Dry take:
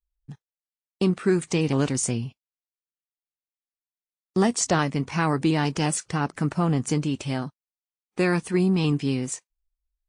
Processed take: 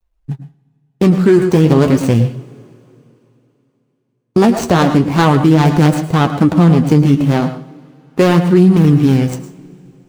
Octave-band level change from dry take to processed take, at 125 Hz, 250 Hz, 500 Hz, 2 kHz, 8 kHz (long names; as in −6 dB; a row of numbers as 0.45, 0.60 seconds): +14.5, +13.5, +12.5, +8.0, −2.0 decibels